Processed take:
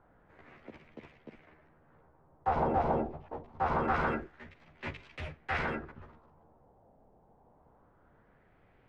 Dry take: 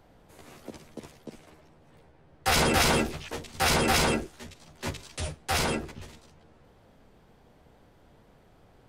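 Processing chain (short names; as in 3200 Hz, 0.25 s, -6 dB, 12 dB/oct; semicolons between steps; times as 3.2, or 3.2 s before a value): LFO low-pass sine 0.25 Hz 780–2300 Hz; gain -7.5 dB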